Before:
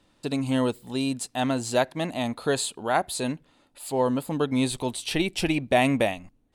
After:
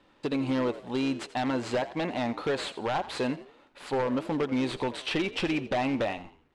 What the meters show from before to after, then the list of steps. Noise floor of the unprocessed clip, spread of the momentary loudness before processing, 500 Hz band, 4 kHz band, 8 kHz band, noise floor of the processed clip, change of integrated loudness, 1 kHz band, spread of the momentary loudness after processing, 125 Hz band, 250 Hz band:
-65 dBFS, 7 LU, -3.5 dB, -4.0 dB, -14.0 dB, -62 dBFS, -4.0 dB, -4.0 dB, 4 LU, -6.0 dB, -3.0 dB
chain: CVSD coder 64 kbps; tone controls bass -9 dB, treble -12 dB; band-stop 670 Hz, Q 12; in parallel at -1.5 dB: peak limiter -22 dBFS, peak gain reduction 11.5 dB; on the sum: compression 3:1, threshold -24 dBFS, peak gain reduction 7 dB; wavefolder -21 dBFS; distance through air 71 m; on a send: frequency-shifting echo 85 ms, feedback 35%, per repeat +70 Hz, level -15.5 dB

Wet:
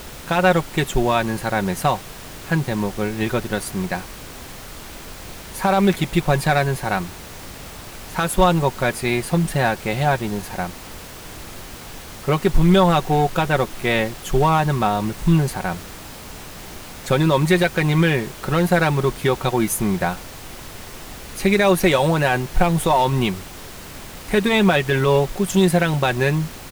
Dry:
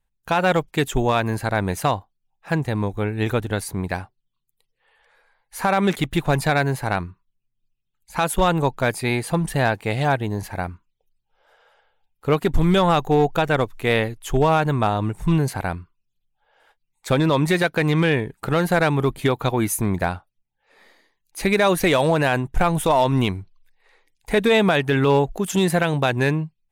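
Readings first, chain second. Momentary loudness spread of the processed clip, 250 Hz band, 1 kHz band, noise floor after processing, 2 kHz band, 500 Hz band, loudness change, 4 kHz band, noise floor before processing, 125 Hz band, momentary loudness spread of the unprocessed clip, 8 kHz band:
19 LU, +2.0 dB, +1.5 dB, -37 dBFS, +1.5 dB, +1.0 dB, +1.5 dB, +2.0 dB, -75 dBFS, +1.5 dB, 9 LU, +3.0 dB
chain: comb 5.4 ms, depth 57%; added noise pink -36 dBFS

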